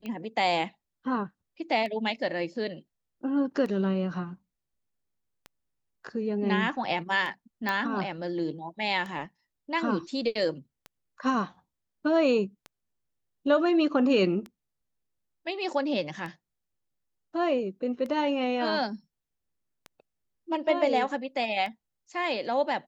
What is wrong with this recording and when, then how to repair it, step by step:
tick 33 1/3 rpm -25 dBFS
7.69 pop -15 dBFS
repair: de-click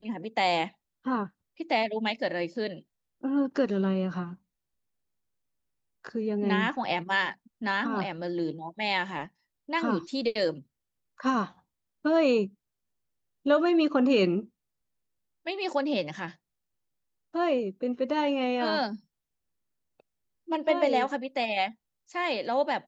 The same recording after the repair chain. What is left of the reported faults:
none

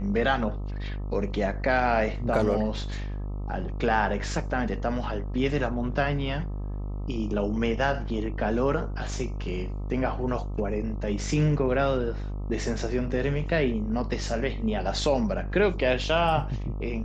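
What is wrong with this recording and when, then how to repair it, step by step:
buzz 50 Hz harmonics 26 -32 dBFS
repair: de-hum 50 Hz, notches 26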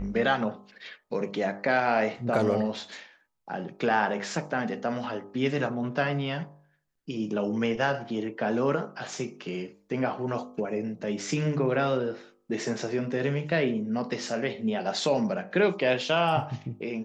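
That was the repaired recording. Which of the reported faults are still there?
none

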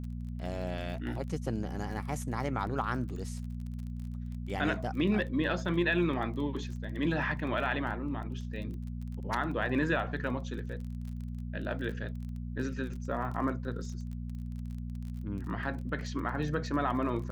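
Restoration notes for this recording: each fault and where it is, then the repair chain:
crackle 25/s -40 dBFS
hum 60 Hz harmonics 4 -38 dBFS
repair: de-click; de-hum 60 Hz, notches 4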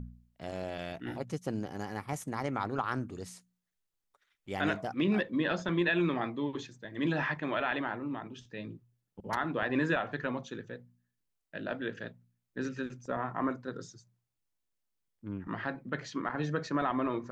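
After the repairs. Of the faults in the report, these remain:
none

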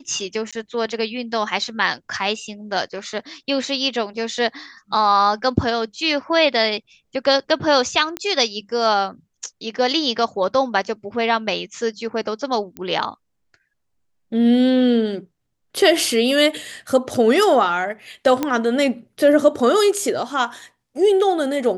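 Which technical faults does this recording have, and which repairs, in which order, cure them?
0.51–0.53 gap 16 ms
8.17 pop -10 dBFS
12.77 pop -16 dBFS
18.43 pop -7 dBFS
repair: de-click; interpolate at 0.51, 16 ms

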